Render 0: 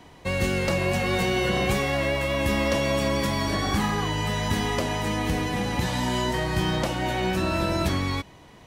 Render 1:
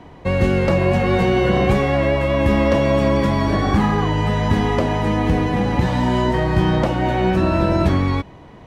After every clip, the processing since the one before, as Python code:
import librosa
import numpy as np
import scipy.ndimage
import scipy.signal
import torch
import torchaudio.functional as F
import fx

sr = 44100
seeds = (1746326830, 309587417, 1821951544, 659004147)

y = fx.lowpass(x, sr, hz=1100.0, slope=6)
y = y * librosa.db_to_amplitude(9.0)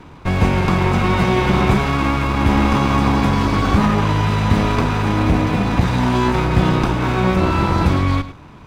y = fx.lower_of_two(x, sr, delay_ms=0.82)
y = y + 10.0 ** (-14.0 / 20.0) * np.pad(y, (int(105 * sr / 1000.0), 0))[:len(y)]
y = y * librosa.db_to_amplitude(2.5)